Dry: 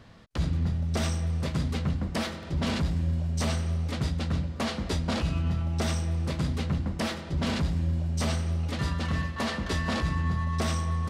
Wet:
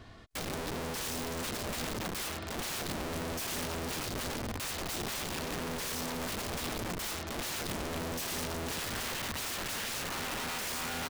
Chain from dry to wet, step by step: comb 2.8 ms, depth 51%; compressor 4:1, threshold -29 dBFS, peak gain reduction 7.5 dB; wrapped overs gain 32 dB

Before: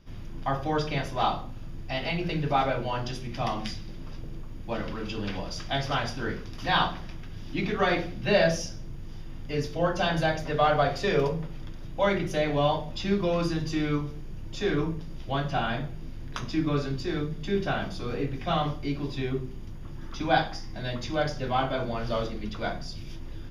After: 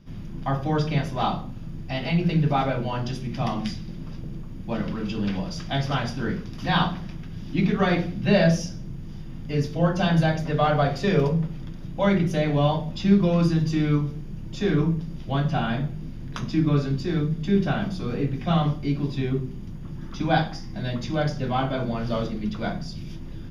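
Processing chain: bell 180 Hz +11 dB 1.1 oct

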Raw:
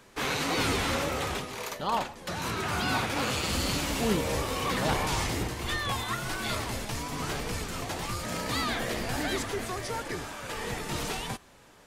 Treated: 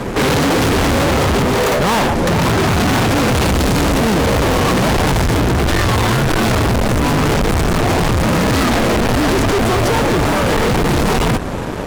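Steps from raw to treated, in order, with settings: tilt shelf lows +10 dB, about 1100 Hz; fuzz box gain 46 dB, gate -55 dBFS

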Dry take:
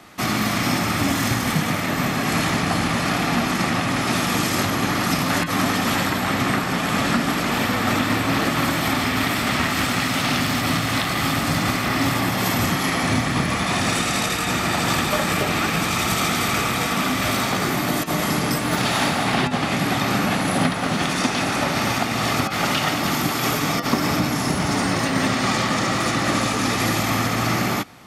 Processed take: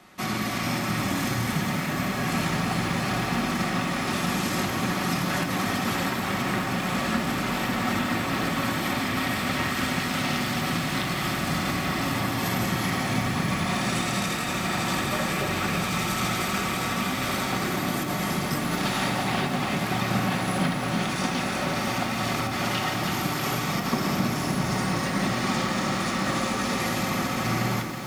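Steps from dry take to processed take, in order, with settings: on a send at -5 dB: reverb RT60 0.85 s, pre-delay 4 ms; on the sum: lo-fi delay 0.323 s, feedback 80%, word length 6-bit, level -9.5 dB; gain -7.5 dB

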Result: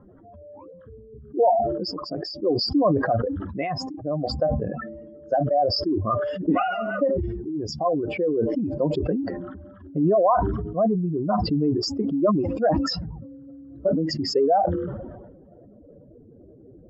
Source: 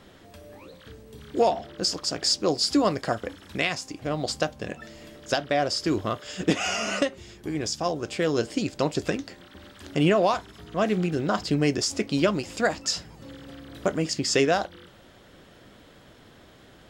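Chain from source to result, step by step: spectral contrast raised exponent 2.7; low-pass sweep 1100 Hz -> 460 Hz, 14.94–16.19; sustainer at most 39 dB/s

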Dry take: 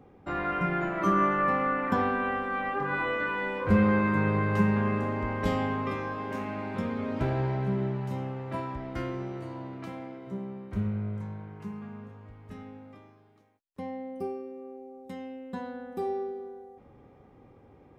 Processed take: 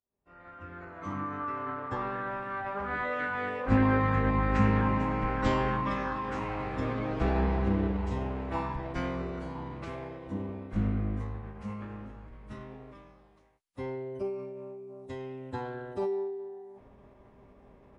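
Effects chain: opening faded in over 5.27 s; bell 300 Hz -4.5 dB 0.69 oct; formant-preserving pitch shift -12 st; gain +2.5 dB

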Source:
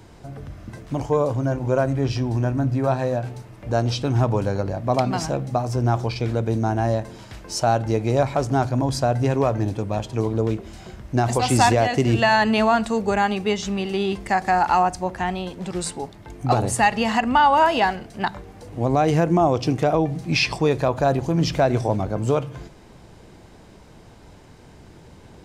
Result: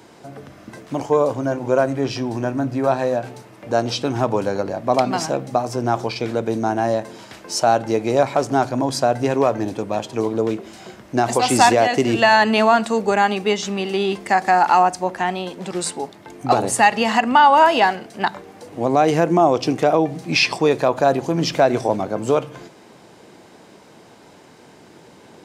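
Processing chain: HPF 230 Hz 12 dB/oct; gain +4 dB

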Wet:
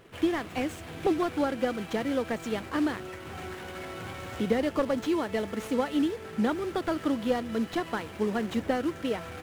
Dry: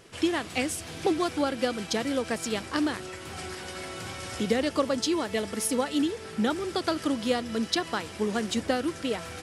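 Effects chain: median filter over 9 samples; slew limiter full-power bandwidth 68 Hz

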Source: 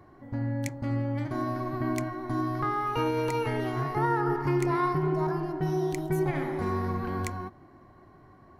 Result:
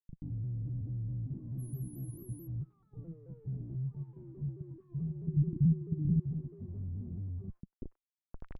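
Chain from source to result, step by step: spectral contrast raised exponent 2.6; limiter -26 dBFS, peak gain reduction 8 dB; Schmitt trigger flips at -46.5 dBFS; low-pass sweep 160 Hz -> 2800 Hz, 7.61–8.57; 1.52–2.4 whine 11000 Hz -49 dBFS; 5.27–6.2 resonant low shelf 370 Hz +8.5 dB, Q 1.5; three bands offset in time lows, highs, mids 60/100 ms, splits 1100/3800 Hz; shaped vibrato saw down 4.6 Hz, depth 160 cents; gain -7 dB

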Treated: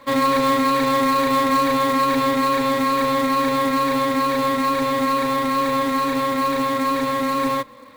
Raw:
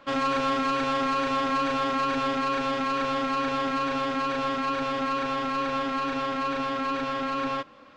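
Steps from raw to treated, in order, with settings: ripple EQ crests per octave 1, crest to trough 11 dB; short-mantissa float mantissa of 2-bit; gain +4.5 dB

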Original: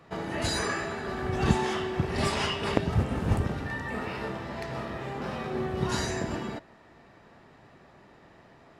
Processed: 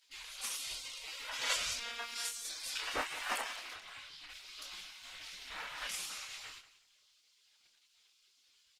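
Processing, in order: 3.72–4.29 LPF 4000 Hz -> 2300 Hz 6 dB/oct; spectral gate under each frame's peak -25 dB weak; doubler 27 ms -5 dB; feedback echo 0.183 s, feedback 25%, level -16 dB; 1.79–2.45 robotiser 234 Hz; gain +5.5 dB; Opus 16 kbps 48000 Hz

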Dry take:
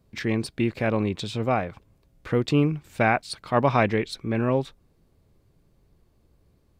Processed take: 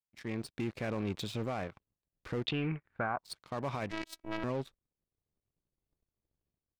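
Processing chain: AGC gain up to 11 dB; limiter -11 dBFS, peak gain reduction 9.5 dB; soft clip -18 dBFS, distortion -12 dB; 3.91–4.44 robotiser 325 Hz; power-law curve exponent 2; 2.45–3.24 synth low-pass 3500 Hz -> 960 Hz, resonance Q 3.6; gain -5.5 dB

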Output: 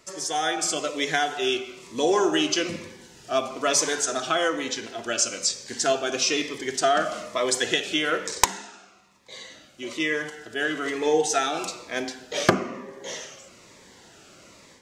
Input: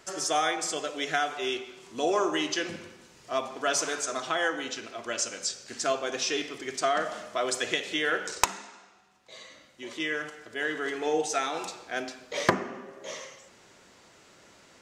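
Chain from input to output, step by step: AGC gain up to 7 dB; cascading phaser falling 1.1 Hz

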